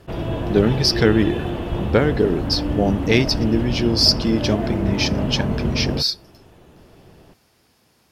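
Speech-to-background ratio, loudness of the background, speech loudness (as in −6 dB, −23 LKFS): 5.0 dB, −25.0 LKFS, −20.0 LKFS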